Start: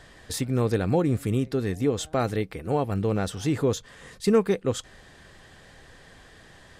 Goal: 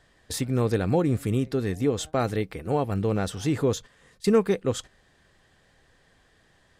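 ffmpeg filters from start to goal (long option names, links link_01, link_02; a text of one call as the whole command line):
ffmpeg -i in.wav -af "agate=range=-11dB:threshold=-38dB:ratio=16:detection=peak" out.wav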